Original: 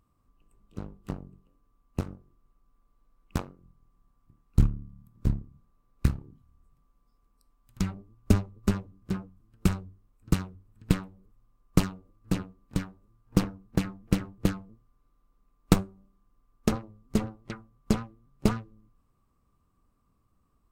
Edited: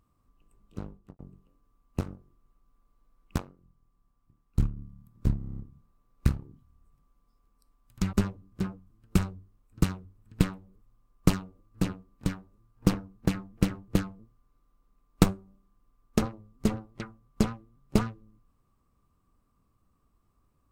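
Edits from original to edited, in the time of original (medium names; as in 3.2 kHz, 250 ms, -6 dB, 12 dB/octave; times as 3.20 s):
0.88–1.19 s: studio fade out
3.38–4.77 s: gain -4.5 dB
5.37 s: stutter 0.03 s, 8 plays
7.92–8.63 s: delete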